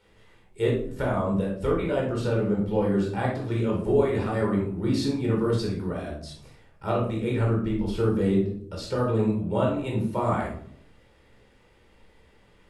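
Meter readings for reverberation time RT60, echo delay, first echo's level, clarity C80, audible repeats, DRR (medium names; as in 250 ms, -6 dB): 0.60 s, no echo, no echo, 9.0 dB, no echo, -3.0 dB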